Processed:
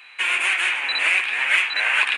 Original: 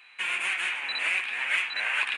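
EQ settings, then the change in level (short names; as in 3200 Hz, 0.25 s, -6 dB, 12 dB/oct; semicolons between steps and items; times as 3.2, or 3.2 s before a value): steep high-pass 240 Hz 48 dB/oct; +8.0 dB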